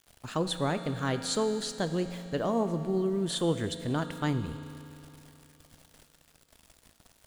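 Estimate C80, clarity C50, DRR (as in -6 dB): 10.5 dB, 10.0 dB, 9.0 dB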